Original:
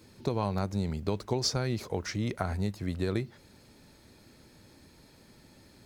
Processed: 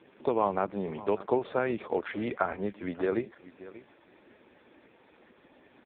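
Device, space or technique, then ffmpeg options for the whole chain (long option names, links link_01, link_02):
satellite phone: -af "highpass=350,lowpass=3100,aecho=1:1:587:0.133,volume=7.5dB" -ar 8000 -c:a libopencore_amrnb -b:a 4750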